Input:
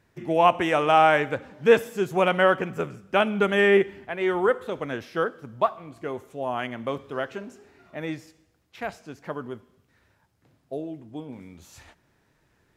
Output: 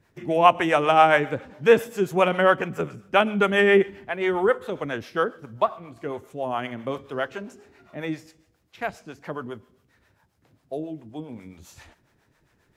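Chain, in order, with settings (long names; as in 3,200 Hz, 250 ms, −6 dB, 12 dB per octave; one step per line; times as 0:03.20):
two-band tremolo in antiphase 7.4 Hz, depth 70%, crossover 450 Hz
level +4.5 dB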